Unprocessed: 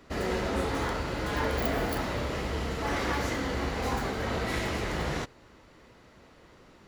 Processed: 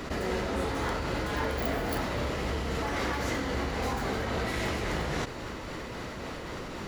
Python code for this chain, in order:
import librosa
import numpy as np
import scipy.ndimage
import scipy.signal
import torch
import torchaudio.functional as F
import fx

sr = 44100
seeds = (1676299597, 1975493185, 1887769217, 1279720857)

y = fx.tremolo_shape(x, sr, shape='triangle', hz=3.7, depth_pct=60)
y = fx.env_flatten(y, sr, amount_pct=70)
y = F.gain(torch.from_numpy(y), -1.5).numpy()